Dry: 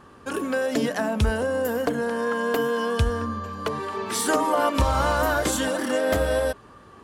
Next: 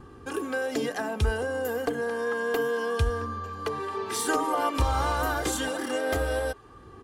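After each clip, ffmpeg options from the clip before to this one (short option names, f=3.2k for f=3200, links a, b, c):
-filter_complex "[0:a]aecho=1:1:2.5:0.52,acrossover=split=350|1600|3300[a][b][c][d];[a]acompressor=mode=upward:threshold=-34dB:ratio=2.5[e];[e][b][c][d]amix=inputs=4:normalize=0,volume=-5dB"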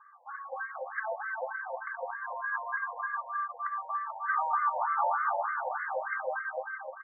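-af "aecho=1:1:230|437|623.3|791|941.9:0.631|0.398|0.251|0.158|0.1,afftfilt=real='re*between(b*sr/1024,720*pow(1600/720,0.5+0.5*sin(2*PI*3.3*pts/sr))/1.41,720*pow(1600/720,0.5+0.5*sin(2*PI*3.3*pts/sr))*1.41)':imag='im*between(b*sr/1024,720*pow(1600/720,0.5+0.5*sin(2*PI*3.3*pts/sr))/1.41,720*pow(1600/720,0.5+0.5*sin(2*PI*3.3*pts/sr))*1.41)':win_size=1024:overlap=0.75"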